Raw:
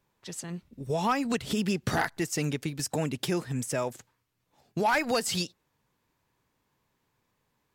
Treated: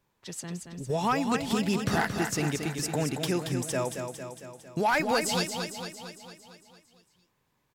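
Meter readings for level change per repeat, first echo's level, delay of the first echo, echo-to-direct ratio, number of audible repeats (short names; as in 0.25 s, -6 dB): -4.5 dB, -6.5 dB, 0.227 s, -4.5 dB, 7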